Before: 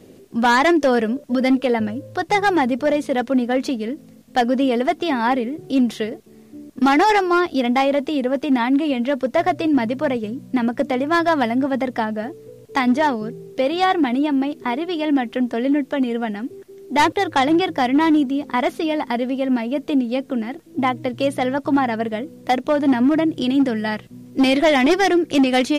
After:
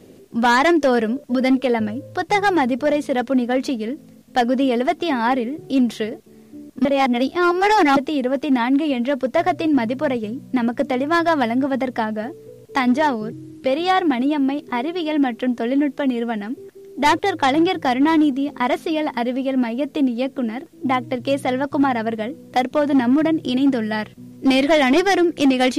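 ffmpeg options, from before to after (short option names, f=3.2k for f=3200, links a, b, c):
-filter_complex "[0:a]asplit=5[a][b][c][d][e];[a]atrim=end=6.852[f];[b]atrim=start=6.848:end=7.972,asetpts=PTS-STARTPTS,areverse[g];[c]atrim=start=7.968:end=13.324[h];[d]atrim=start=13.32:end=13.59,asetpts=PTS-STARTPTS,asetrate=35280,aresample=44100[i];[e]atrim=start=13.586[j];[f][g]acrossfade=d=0.004:c1=hsin:c2=hsin[k];[k][h]acrossfade=d=0.004:c1=hsin:c2=hsin[l];[l][i]acrossfade=d=0.004:c1=hsin:c2=hsin[m];[m][j]acrossfade=d=0.004:c1=hsin:c2=hsin"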